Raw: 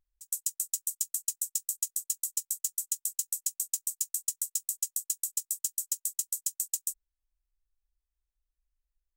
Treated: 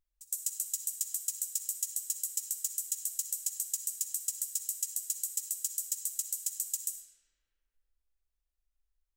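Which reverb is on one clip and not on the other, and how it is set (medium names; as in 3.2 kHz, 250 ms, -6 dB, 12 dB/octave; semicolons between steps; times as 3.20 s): algorithmic reverb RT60 2.9 s, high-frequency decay 0.45×, pre-delay 20 ms, DRR 3.5 dB; trim -2.5 dB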